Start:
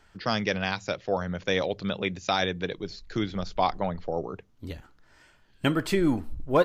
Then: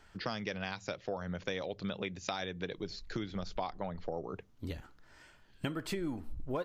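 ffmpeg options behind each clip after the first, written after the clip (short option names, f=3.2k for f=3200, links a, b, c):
-af "acompressor=threshold=-33dB:ratio=6,volume=-1dB"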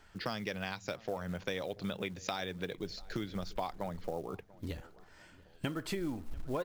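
-filter_complex "[0:a]acrusher=bits=6:mode=log:mix=0:aa=0.000001,asplit=2[a][b];[b]adelay=690,lowpass=f=2k:p=1,volume=-21.5dB,asplit=2[c][d];[d]adelay=690,lowpass=f=2k:p=1,volume=0.46,asplit=2[e][f];[f]adelay=690,lowpass=f=2k:p=1,volume=0.46[g];[a][c][e][g]amix=inputs=4:normalize=0"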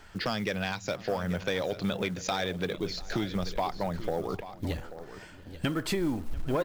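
-af "asoftclip=type=tanh:threshold=-28dB,aecho=1:1:837:0.211,volume=8.5dB"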